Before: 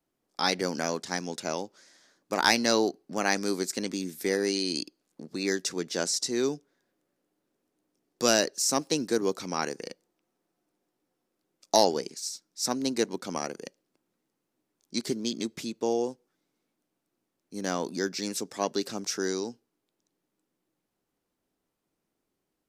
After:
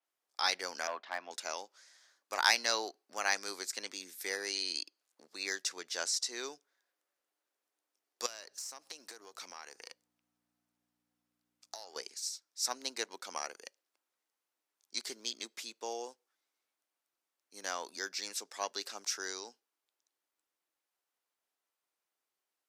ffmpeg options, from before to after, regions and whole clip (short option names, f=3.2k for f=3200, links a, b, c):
-filter_complex "[0:a]asettb=1/sr,asplit=3[a][b][c];[a]atrim=end=0.874[d];[b]atrim=start=0.87:end=1.31,asetpts=PTS-STARTPTS,afade=t=in:d=0.004:c=qsin,afade=t=out:st=0.436:d=0.004:c=qsin,highpass=f=180:w=0.5412,highpass=f=180:w=1.3066,equalizer=f=450:t=q:w=4:g=-6,equalizer=f=640:t=q:w=4:g=8,equalizer=f=1.1k:t=q:w=4:g=5,lowpass=f=3.1k:w=0.5412,lowpass=f=3.1k:w=1.3066,volume=21.5dB,asoftclip=hard,volume=-21.5dB[e];[c]atrim=start=1.306[f];[d][e]acrossfade=d=0.004:c1=hsin:c2=qsin[g];[g][f]acrossfade=d=0.004:c1=qsin:c2=hsin,asettb=1/sr,asplit=3[h][i][j];[h]atrim=end=8.264[k];[i]atrim=start=8.26:end=11.96,asetpts=PTS-STARTPTS,afade=t=in:d=0.004:c=qsin,afade=t=out:st=3.696:d=0.004:c=qsin,aeval=exprs='if(lt(val(0),0),0.708*val(0),val(0))':c=same,acompressor=threshold=-35dB:ratio=16:attack=3.2:release=140:knee=1:detection=peak,aeval=exprs='val(0)+0.00224*(sin(2*PI*60*n/s)+sin(2*PI*2*60*n/s)/2+sin(2*PI*3*60*n/s)/3+sin(2*PI*4*60*n/s)/4+sin(2*PI*5*60*n/s)/5)':c=same[l];[j]atrim=start=11.956[m];[k][l]acrossfade=d=0.004:c1=hsin:c2=qsin[n];[n][m]acrossfade=d=0.004:c1=qsin:c2=hsin,highpass=870,adynamicequalizer=threshold=0.00794:dfrequency=6200:dqfactor=0.7:tfrequency=6200:tqfactor=0.7:attack=5:release=100:ratio=0.375:range=3.5:mode=cutabove:tftype=highshelf,volume=-3dB"